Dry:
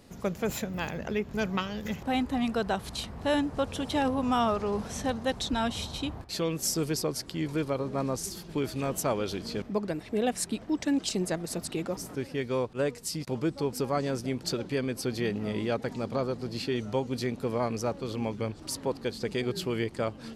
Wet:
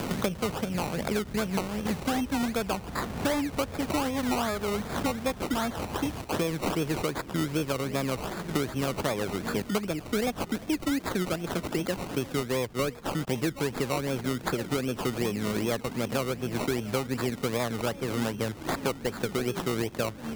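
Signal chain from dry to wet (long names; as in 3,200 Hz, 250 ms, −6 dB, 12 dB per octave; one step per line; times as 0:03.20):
sample-and-hold swept by an LFO 21×, swing 60% 2.6 Hz
multiband upward and downward compressor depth 100%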